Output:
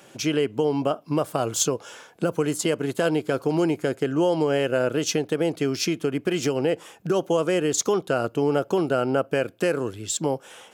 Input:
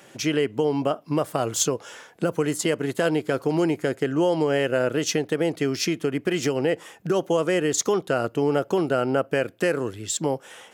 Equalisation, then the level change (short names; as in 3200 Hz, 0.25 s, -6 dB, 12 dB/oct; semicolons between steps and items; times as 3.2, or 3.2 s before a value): bell 1900 Hz -7.5 dB 0.2 oct; 0.0 dB